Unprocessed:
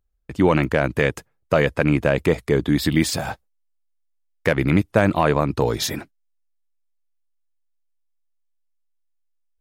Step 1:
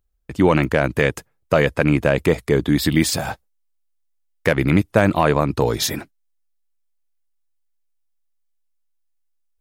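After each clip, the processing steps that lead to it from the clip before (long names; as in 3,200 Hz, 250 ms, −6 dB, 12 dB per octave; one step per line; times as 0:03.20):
high-shelf EQ 7,100 Hz +4 dB
level +1.5 dB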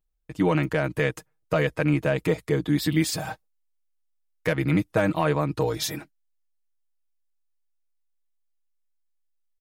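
comb filter 6.4 ms, depth 78%
level −9 dB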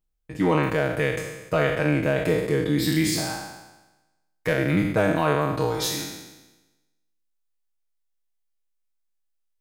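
peak hold with a decay on every bin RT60 1.08 s
level −1.5 dB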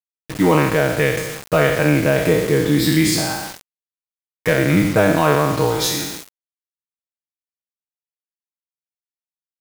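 bit-depth reduction 6 bits, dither none
level +6.5 dB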